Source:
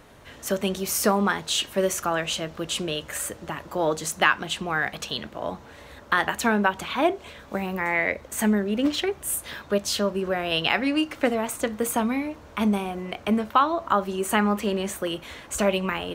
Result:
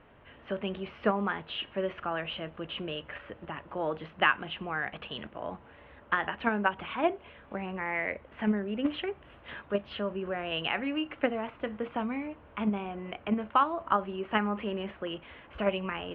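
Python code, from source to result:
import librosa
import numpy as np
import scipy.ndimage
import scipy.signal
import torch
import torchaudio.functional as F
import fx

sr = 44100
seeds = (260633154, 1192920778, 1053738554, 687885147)

p1 = scipy.signal.sosfilt(scipy.signal.ellip(4, 1.0, 60, 3000.0, 'lowpass', fs=sr, output='sos'), x)
p2 = fx.level_steps(p1, sr, step_db=20)
p3 = p1 + (p2 * librosa.db_to_amplitude(-2.0))
y = p3 * librosa.db_to_amplitude(-8.5)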